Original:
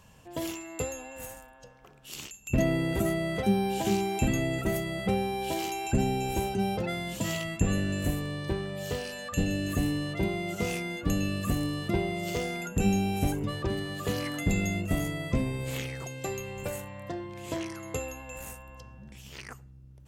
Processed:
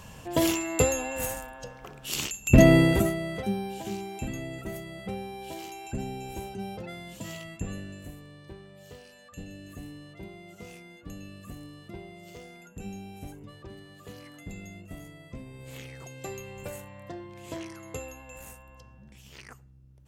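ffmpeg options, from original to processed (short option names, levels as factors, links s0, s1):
-af "volume=10.6,afade=t=out:st=2.78:d=0.34:silence=0.266073,afade=t=out:st=3.12:d=0.7:silence=0.473151,afade=t=out:st=7.57:d=0.51:silence=0.473151,afade=t=in:st=15.46:d=0.78:silence=0.298538"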